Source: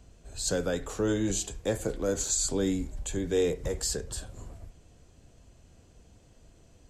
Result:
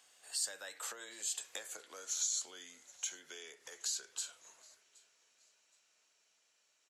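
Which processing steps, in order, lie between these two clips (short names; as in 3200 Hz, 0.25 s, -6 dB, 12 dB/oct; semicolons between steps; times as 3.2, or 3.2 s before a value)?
Doppler pass-by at 1.61, 28 m/s, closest 15 m; compressor 8:1, threshold -46 dBFS, peak gain reduction 22 dB; HPF 1400 Hz 12 dB/oct; on a send: feedback echo 0.772 s, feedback 32%, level -24 dB; on the sum: gain +13 dB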